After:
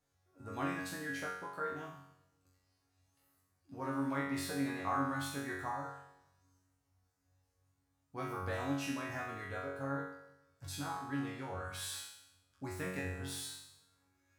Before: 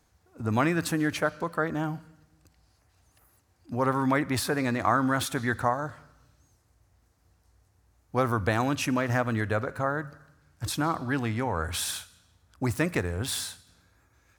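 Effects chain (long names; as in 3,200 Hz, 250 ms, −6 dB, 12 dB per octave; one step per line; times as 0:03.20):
resonators tuned to a chord F#2 fifth, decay 0.79 s
on a send: convolution reverb RT60 1.6 s, pre-delay 7 ms, DRR 23 dB
on the sum: level +4.5 dB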